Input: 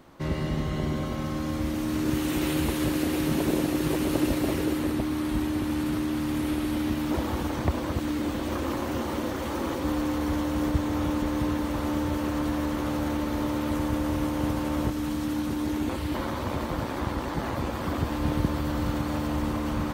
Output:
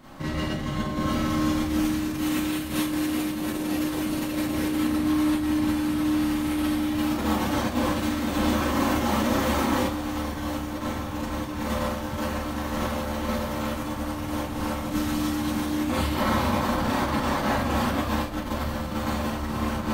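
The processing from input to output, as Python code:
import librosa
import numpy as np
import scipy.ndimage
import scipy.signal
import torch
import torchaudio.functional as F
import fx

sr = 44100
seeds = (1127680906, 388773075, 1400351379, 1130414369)

y = fx.peak_eq(x, sr, hz=410.0, db=-9.0, octaves=0.44)
y = fx.over_compress(y, sr, threshold_db=-31.0, ratio=-0.5)
y = fx.rev_schroeder(y, sr, rt60_s=0.31, comb_ms=29, drr_db=-7.5)
y = y * librosa.db_to_amplitude(-2.0)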